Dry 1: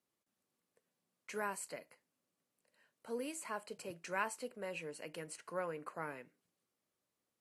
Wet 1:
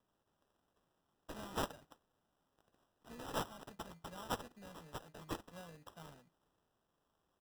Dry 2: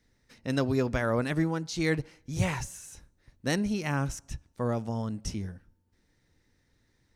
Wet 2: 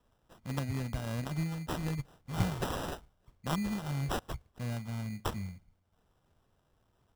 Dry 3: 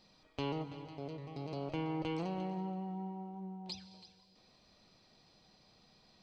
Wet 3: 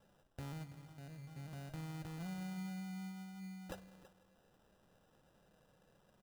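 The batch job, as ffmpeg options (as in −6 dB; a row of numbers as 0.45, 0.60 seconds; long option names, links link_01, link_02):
-af "firequalizer=gain_entry='entry(190,0);entry(370,-19);entry(700,-6);entry(1600,-21);entry(6700,13)':delay=0.05:min_phase=1,acrusher=samples=20:mix=1:aa=0.000001,volume=-3dB"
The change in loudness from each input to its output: −3.0, −6.0, −6.5 LU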